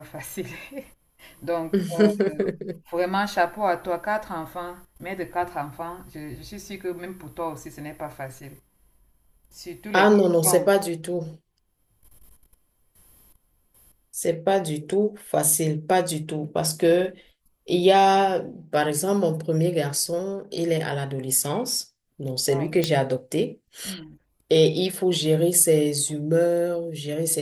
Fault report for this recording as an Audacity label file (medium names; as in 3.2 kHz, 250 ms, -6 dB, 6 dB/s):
10.820000	10.820000	dropout 3.5 ms
22.840000	22.840000	pop -8 dBFS